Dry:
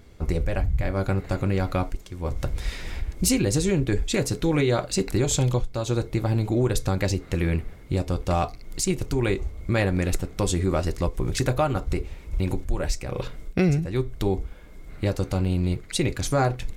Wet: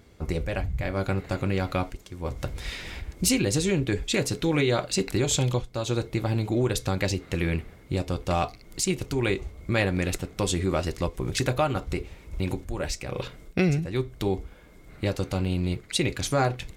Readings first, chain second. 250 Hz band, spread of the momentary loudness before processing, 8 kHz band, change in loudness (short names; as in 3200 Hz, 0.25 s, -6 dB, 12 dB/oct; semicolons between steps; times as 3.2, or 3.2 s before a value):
-2.0 dB, 8 LU, -0.5 dB, -2.0 dB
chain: HPF 78 Hz 6 dB/oct; dynamic EQ 3000 Hz, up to +5 dB, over -46 dBFS, Q 1.1; gain -1.5 dB